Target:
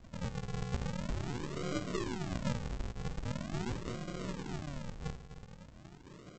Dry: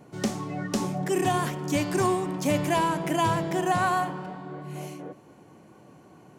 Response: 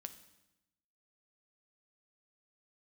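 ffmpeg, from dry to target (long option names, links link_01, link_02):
-filter_complex "[0:a]lowpass=frequency=4400:width=0.5412,lowpass=frequency=4400:width=1.3066,aecho=1:1:1.9:0.51,acompressor=threshold=-34dB:ratio=5,asuperstop=centerf=1800:order=8:qfactor=0.78,aeval=exprs='0.075*(cos(1*acos(clip(val(0)/0.075,-1,1)))-cos(1*PI/2))+0.0075*(cos(6*acos(clip(val(0)/0.075,-1,1)))-cos(6*PI/2))':channel_layout=same,asplit=2[link_01][link_02];[link_02]adelay=311,lowpass=frequency=1400:poles=1,volume=-10.5dB,asplit=2[link_03][link_04];[link_04]adelay=311,lowpass=frequency=1400:poles=1,volume=0.35,asplit=2[link_05][link_06];[link_06]adelay=311,lowpass=frequency=1400:poles=1,volume=0.35,asplit=2[link_07][link_08];[link_08]adelay=311,lowpass=frequency=1400:poles=1,volume=0.35[link_09];[link_03][link_05][link_07][link_09]amix=inputs=4:normalize=0[link_10];[link_01][link_10]amix=inputs=2:normalize=0[link_11];[1:a]atrim=start_sample=2205,atrim=end_sample=3528[link_12];[link_11][link_12]afir=irnorm=-1:irlink=0,aresample=16000,acrusher=samples=35:mix=1:aa=0.000001:lfo=1:lforange=35:lforate=0.43,aresample=44100,volume=4dB"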